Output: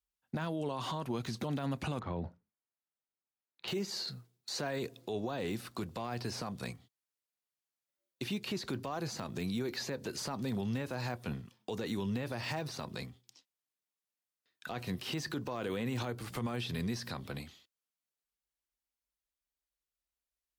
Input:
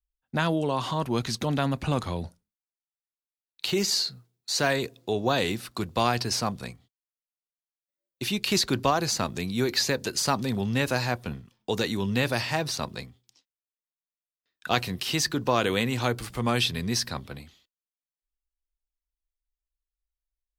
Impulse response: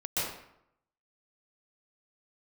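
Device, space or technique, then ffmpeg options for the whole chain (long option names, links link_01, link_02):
podcast mastering chain: -filter_complex "[0:a]asettb=1/sr,asplit=3[link_01][link_02][link_03];[link_01]atrim=end=1.994[link_04];[link_02]atrim=start=1.99:end=3.68,asetpts=PTS-STARTPTS,afade=type=in:duration=0.004:curve=qsin,afade=type=out:start_time=1.686:duration=0.004:curve=qsin,lowpass=1800[link_05];[link_03]atrim=start=3.676[link_06];[link_04][link_05]acrossfade=duration=0.004:curve1=hsin:curve2=qsin[link_07];[link_07][link_06]acrossfade=duration=0.004:curve1=qsin:curve2=hsin,highpass=88,deesser=1,acompressor=threshold=-34dB:ratio=3,alimiter=level_in=4.5dB:limit=-24dB:level=0:latency=1:release=34,volume=-4.5dB,volume=1.5dB" -ar 48000 -c:a libmp3lame -b:a 96k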